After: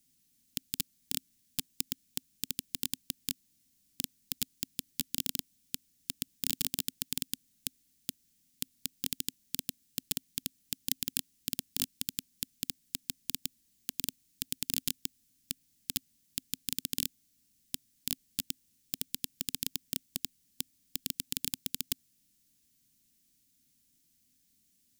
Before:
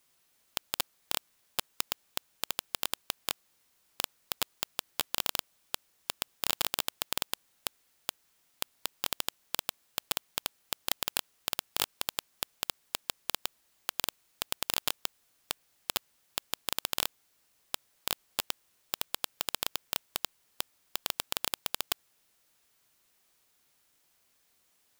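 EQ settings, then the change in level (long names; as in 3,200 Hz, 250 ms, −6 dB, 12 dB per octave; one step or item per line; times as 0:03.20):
drawn EQ curve 110 Hz 0 dB, 260 Hz +5 dB, 430 Hz −17 dB, 780 Hz −24 dB, 1,200 Hz −26 dB, 1,700 Hz −16 dB, 6,100 Hz −4 dB
+4.0 dB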